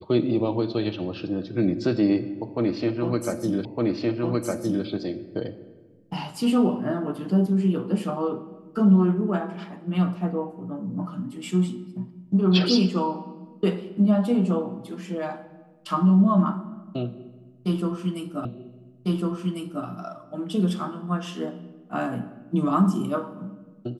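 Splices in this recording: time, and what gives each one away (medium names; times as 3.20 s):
3.65 s: repeat of the last 1.21 s
18.45 s: repeat of the last 1.4 s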